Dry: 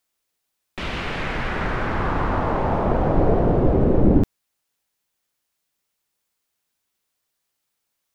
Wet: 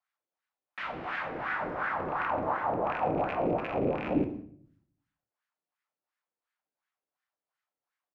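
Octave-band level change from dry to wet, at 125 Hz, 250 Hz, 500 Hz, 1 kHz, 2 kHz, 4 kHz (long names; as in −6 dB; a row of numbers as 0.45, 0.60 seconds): −18.5 dB, −12.0 dB, −9.0 dB, −5.0 dB, −5.0 dB, can't be measured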